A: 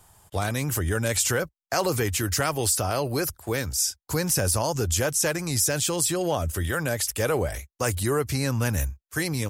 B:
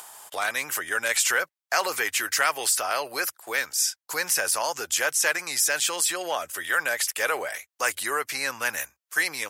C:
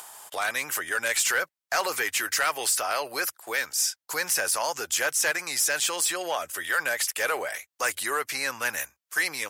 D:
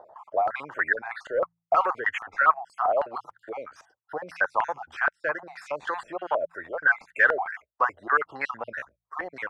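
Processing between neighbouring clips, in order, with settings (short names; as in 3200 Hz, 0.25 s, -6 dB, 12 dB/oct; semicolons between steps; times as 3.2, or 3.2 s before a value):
HPF 670 Hz 12 dB/oct; dynamic EQ 1900 Hz, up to +8 dB, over -45 dBFS, Q 0.95; upward compressor, threshold -33 dBFS
soft clip -15.5 dBFS, distortion -18 dB
random spectral dropouts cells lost 46%; de-hum 56.23 Hz, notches 3; stepped low-pass 6.3 Hz 590–1700 Hz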